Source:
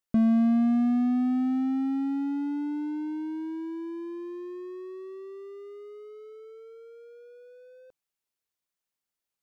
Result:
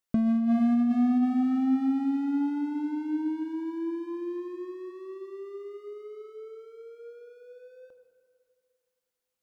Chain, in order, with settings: plate-style reverb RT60 2.2 s, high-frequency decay 0.6×, DRR 7 dB; compressor with a negative ratio -22 dBFS, ratio -1

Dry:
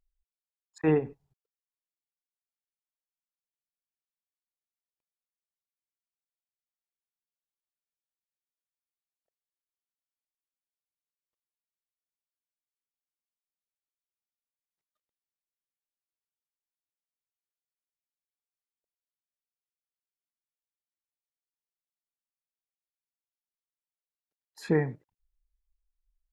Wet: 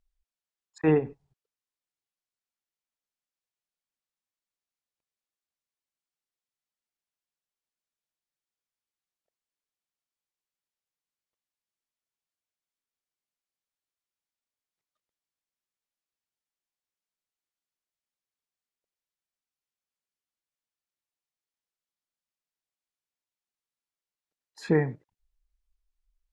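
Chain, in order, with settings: low-pass 8.4 kHz; trim +2 dB

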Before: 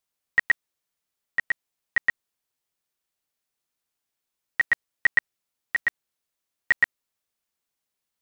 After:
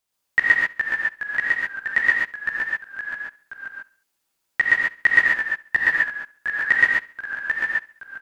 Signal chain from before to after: ever faster or slower copies 393 ms, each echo -1 st, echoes 3, each echo -6 dB; on a send: feedback delay 69 ms, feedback 49%, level -22 dB; on the sum: gated-style reverb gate 160 ms rising, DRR -3 dB; trim +2.5 dB

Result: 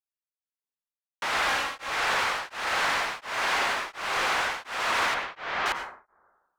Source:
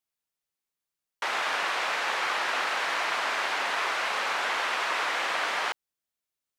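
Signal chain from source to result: 1.48–1.90 s: comb 3.7 ms; waveshaping leveller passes 3; 3.74–4.34 s: frequency shift -30 Hz; 5.14–5.66 s: distance through air 190 m; plate-style reverb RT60 1 s, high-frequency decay 0.3×, pre-delay 80 ms, DRR 6.5 dB; tremolo of two beating tones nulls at 1.4 Hz; trim -5.5 dB

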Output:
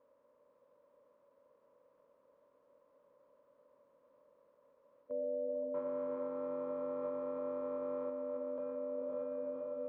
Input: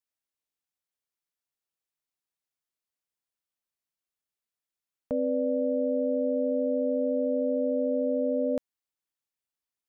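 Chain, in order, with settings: spectral levelling over time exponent 0.6; 5.74–8.10 s: waveshaping leveller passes 3; gain riding 0.5 s; echo that smears into a reverb 500 ms, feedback 43%, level -5.5 dB; flange 0.39 Hz, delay 2.6 ms, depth 6.3 ms, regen -84%; peak limiter -38.5 dBFS, peak gain reduction 19 dB; two resonant band-passes 750 Hz, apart 0.84 oct; tilt EQ -2.5 dB/octave; endings held to a fixed fall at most 120 dB/s; trim +11 dB

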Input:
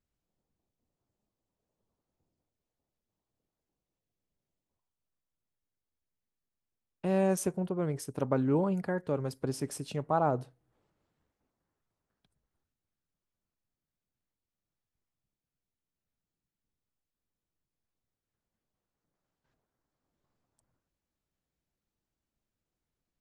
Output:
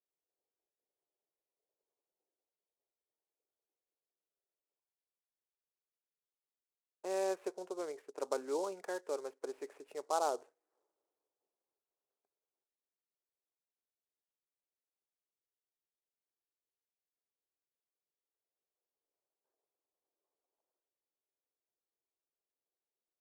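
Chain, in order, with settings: elliptic band-pass 390–2500 Hz, stop band 60 dB; level-controlled noise filter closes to 770 Hz, open at -35 dBFS; delay time shaken by noise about 5.9 kHz, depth 0.035 ms; trim -4.5 dB

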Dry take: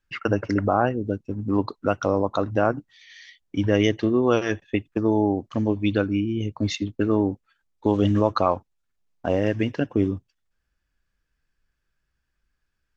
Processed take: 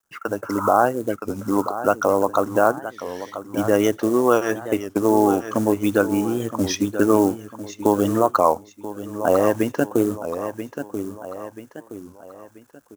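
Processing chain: spectral replace 0.46–0.67 s, 820–1900 Hz both; in parallel at -2.5 dB: compression 5:1, threshold -29 dBFS, peak gain reduction 14 dB; on the sum: companded quantiser 6-bit; high-pass 600 Hz 6 dB/octave; on a send: feedback delay 984 ms, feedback 38%, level -12.5 dB; on the sum: level rider gain up to 13 dB; high-order bell 3 kHz -12 dB; warped record 33 1/3 rpm, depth 160 cents; trim -1 dB

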